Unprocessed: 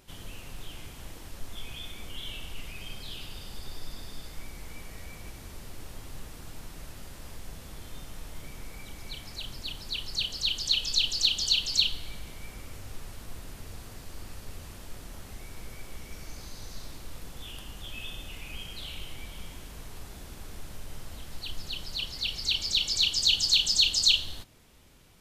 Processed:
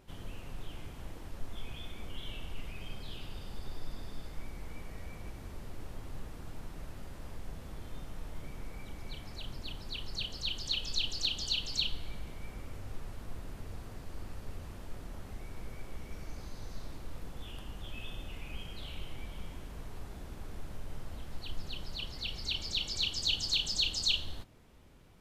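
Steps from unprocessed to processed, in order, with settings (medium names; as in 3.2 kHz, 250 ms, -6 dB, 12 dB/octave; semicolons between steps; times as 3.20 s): treble shelf 2.4 kHz -11.5 dB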